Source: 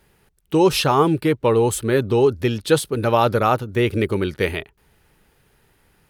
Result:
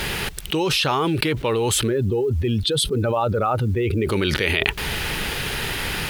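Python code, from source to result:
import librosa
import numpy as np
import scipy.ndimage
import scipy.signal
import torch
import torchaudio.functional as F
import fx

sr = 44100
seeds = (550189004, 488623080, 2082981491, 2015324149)

y = fx.spec_expand(x, sr, power=1.7, at=(1.87, 4.05), fade=0.02)
y = fx.peak_eq(y, sr, hz=3200.0, db=10.5, octaves=1.9)
y = fx.quant_companded(y, sr, bits=8)
y = fx.env_flatten(y, sr, amount_pct=100)
y = y * 10.0 ** (-10.0 / 20.0)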